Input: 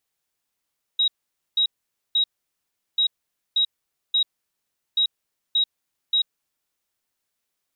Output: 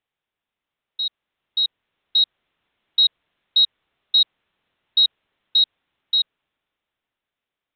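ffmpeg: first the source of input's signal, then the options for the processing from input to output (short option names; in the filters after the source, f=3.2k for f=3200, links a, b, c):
-f lavfi -i "aevalsrc='0.15*sin(2*PI*3820*t)*clip(min(mod(mod(t,1.99),0.58),0.09-mod(mod(t,1.99),0.58))/0.005,0,1)*lt(mod(t,1.99),1.74)':d=5.97:s=44100"
-af "dynaudnorm=f=200:g=17:m=12.5dB,aresample=8000,aresample=44100"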